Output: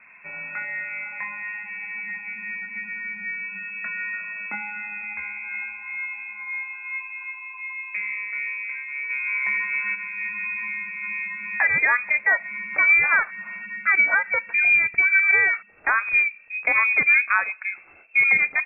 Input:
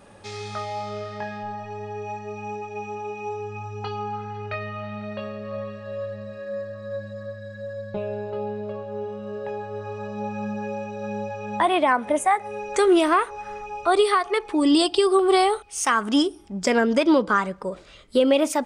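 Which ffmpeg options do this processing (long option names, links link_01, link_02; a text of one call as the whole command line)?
ffmpeg -i in.wav -filter_complex "[0:a]lowpass=frequency=2300:width_type=q:width=0.5098,lowpass=frequency=2300:width_type=q:width=0.6013,lowpass=frequency=2300:width_type=q:width=0.9,lowpass=frequency=2300:width_type=q:width=2.563,afreqshift=-2700,asplit=3[link_01][link_02][link_03];[link_01]afade=type=out:start_time=9.09:duration=0.02[link_04];[link_02]acontrast=73,afade=type=in:start_time=9.09:duration=0.02,afade=type=out:start_time=9.94:duration=0.02[link_05];[link_03]afade=type=in:start_time=9.94:duration=0.02[link_06];[link_04][link_05][link_06]amix=inputs=3:normalize=0" out.wav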